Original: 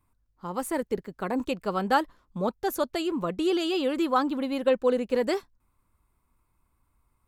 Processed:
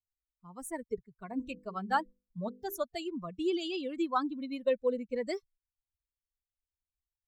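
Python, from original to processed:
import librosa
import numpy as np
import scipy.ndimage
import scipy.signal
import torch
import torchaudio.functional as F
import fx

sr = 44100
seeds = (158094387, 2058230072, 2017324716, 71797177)

y = fx.bin_expand(x, sr, power=2.0)
y = fx.hum_notches(y, sr, base_hz=50, count=10, at=(1.26, 2.8))
y = y * librosa.db_to_amplitude(-3.5)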